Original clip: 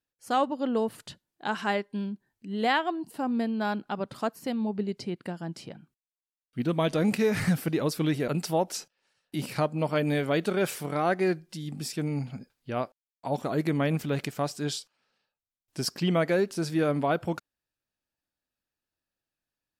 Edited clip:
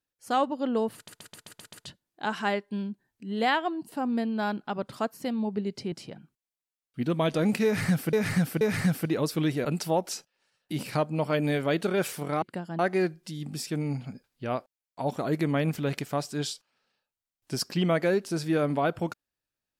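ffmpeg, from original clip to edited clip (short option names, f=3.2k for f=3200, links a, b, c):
-filter_complex "[0:a]asplit=12[a][b][c][d][e][f][g][h][i][j][k][l];[a]atrim=end=1.082[m];[b]atrim=start=0.948:end=1.082[n];[c]atrim=start=0.948:end=1.082[o];[d]atrim=start=0.948:end=1.082[p];[e]atrim=start=0.948:end=1.082[q];[f]atrim=start=0.948:end=1.082[r];[g]atrim=start=0.948:end=5.142[s];[h]atrim=start=5.508:end=7.722[t];[i]atrim=start=7.238:end=7.722[u];[j]atrim=start=7.238:end=11.052[v];[k]atrim=start=5.138:end=5.512[w];[l]atrim=start=11.048[x];[m][n]acrossfade=d=0.004:c1=hsin:c2=hsin[y];[y][o]acrossfade=d=0.004:c1=hsin:c2=hsin[z];[z][p]acrossfade=d=0.004:c1=hsin:c2=hsin[aa];[aa][q]acrossfade=d=0.004:c1=hsin:c2=hsin[ab];[ab][r]acrossfade=d=0.004:c1=hsin:c2=hsin[ac];[ac][s]acrossfade=d=0.004:c1=hsin:c2=hsin[ad];[ad][t]acrossfade=d=0.004:c1=hsin:c2=hsin[ae];[ae][u]acrossfade=d=0.004:c1=hsin:c2=hsin[af];[af][v]acrossfade=d=0.004:c1=hsin:c2=hsin[ag];[ag][w]acrossfade=d=0.004:c1=hsin:c2=hsin[ah];[ah][x]acrossfade=d=0.004:c1=hsin:c2=hsin"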